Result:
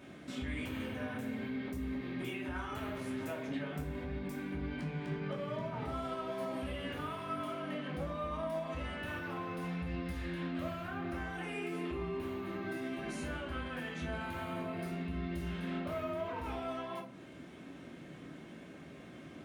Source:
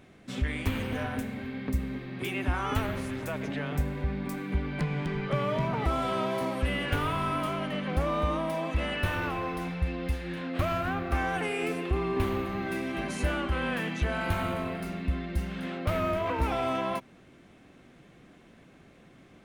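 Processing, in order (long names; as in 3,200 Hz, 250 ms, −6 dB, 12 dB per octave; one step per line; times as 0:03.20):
high-pass filter 95 Hz 12 dB per octave
downward compressor, threshold −40 dBFS, peak gain reduction 15 dB
brickwall limiter −35.5 dBFS, peak gain reduction 7.5 dB
rectangular room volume 350 cubic metres, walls furnished, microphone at 2.7 metres
level −1 dB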